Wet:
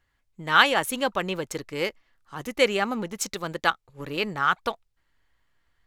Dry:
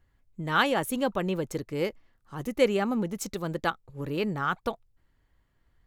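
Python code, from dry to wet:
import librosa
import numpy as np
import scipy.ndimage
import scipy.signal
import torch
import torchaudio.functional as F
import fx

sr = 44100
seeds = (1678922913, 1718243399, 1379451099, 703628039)

p1 = fx.tilt_shelf(x, sr, db=-7.0, hz=710.0)
p2 = fx.backlash(p1, sr, play_db=-34.0)
p3 = p1 + F.gain(torch.from_numpy(p2), -4.5).numpy()
p4 = fx.high_shelf(p3, sr, hz=10000.0, db=-9.0)
y = F.gain(torch.from_numpy(p4), -1.0).numpy()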